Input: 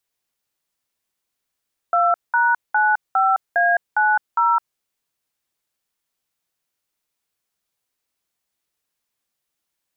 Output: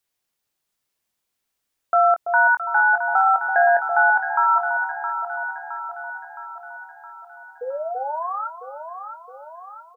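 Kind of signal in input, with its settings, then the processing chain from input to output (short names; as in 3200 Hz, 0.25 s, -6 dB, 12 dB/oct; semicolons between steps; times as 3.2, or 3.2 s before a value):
DTMF "2#95A90", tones 0.211 s, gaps 0.196 s, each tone -16.5 dBFS
painted sound rise, 7.61–8.48, 480–1400 Hz -28 dBFS; doubler 23 ms -9.5 dB; on a send: echo with dull and thin repeats by turns 0.333 s, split 890 Hz, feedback 75%, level -5.5 dB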